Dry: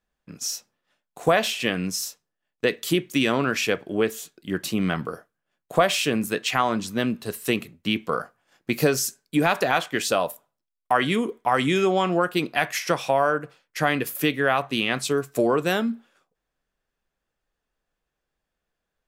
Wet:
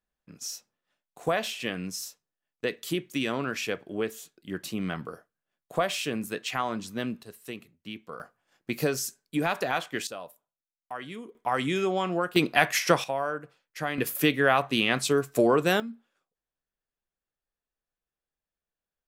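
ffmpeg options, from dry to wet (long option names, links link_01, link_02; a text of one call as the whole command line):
ffmpeg -i in.wav -af "asetnsamples=nb_out_samples=441:pad=0,asendcmd='7.23 volume volume -15.5dB;8.2 volume volume -6.5dB;10.07 volume volume -17dB;11.35 volume volume -6dB;12.36 volume volume 1.5dB;13.04 volume volume -9dB;13.98 volume volume -0.5dB;15.8 volume volume -12.5dB',volume=-7.5dB" out.wav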